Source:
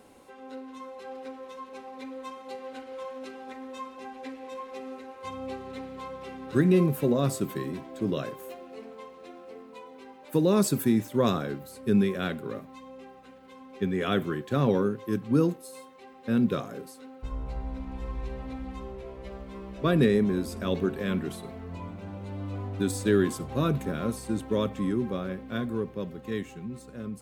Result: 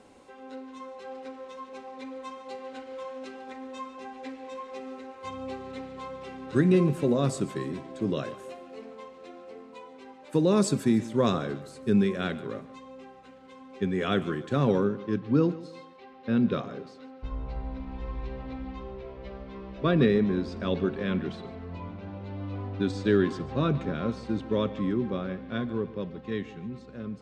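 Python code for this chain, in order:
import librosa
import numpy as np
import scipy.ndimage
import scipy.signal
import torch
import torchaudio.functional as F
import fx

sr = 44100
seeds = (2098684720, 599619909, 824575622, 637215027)

y = fx.lowpass(x, sr, hz=fx.steps((0.0, 8600.0), (14.84, 5000.0)), slope=24)
y = fx.echo_feedback(y, sr, ms=146, feedback_pct=33, wet_db=-17.5)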